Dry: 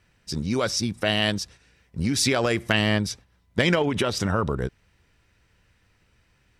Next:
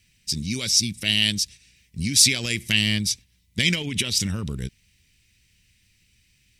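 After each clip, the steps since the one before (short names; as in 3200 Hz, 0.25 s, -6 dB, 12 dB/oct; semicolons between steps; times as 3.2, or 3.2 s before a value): EQ curve 210 Hz 0 dB, 660 Hz -18 dB, 1400 Hz -15 dB, 2200 Hz +5 dB, 9400 Hz +12 dB; gain -1 dB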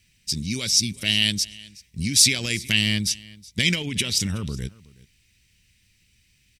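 echo 0.371 s -22 dB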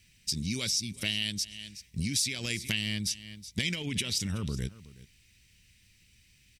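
compressor 4:1, threshold -29 dBFS, peak gain reduction 15 dB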